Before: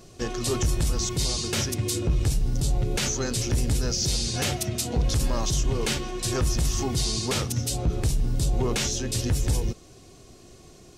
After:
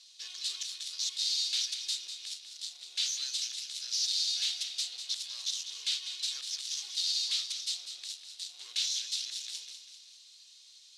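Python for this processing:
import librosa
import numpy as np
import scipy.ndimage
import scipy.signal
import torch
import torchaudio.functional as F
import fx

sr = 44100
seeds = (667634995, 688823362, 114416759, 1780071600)

p1 = fx.cvsd(x, sr, bps=64000)
p2 = 10.0 ** (-28.0 / 20.0) * (np.abs((p1 / 10.0 ** (-28.0 / 20.0) + 3.0) % 4.0 - 2.0) - 1.0)
p3 = p1 + (p2 * librosa.db_to_amplitude(-6.5))
p4 = fx.ladder_bandpass(p3, sr, hz=4300.0, resonance_pct=60)
p5 = fx.echo_feedback(p4, sr, ms=197, feedback_pct=50, wet_db=-9.5)
y = p5 * librosa.db_to_amplitude(5.5)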